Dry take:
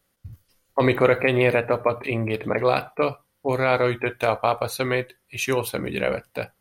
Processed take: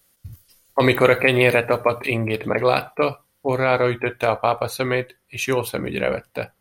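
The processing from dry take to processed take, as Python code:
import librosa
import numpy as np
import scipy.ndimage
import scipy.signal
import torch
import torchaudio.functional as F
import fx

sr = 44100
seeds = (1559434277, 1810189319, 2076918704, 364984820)

y = fx.high_shelf(x, sr, hz=3300.0, db=fx.steps((0.0, 11.0), (2.16, 4.5), (3.48, -2.0)))
y = y * librosa.db_to_amplitude(2.0)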